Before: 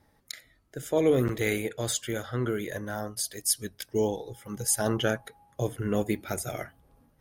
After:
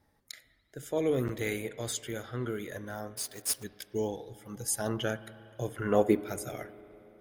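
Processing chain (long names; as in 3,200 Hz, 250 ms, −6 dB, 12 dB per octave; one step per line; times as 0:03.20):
0:03.17–0:03.65: one scale factor per block 3 bits
0:05.74–0:06.21: parametric band 1,600 Hz → 350 Hz +13 dB 2.3 octaves
spring reverb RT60 3.4 s, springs 36/59 ms, chirp 45 ms, DRR 16 dB
level −5.5 dB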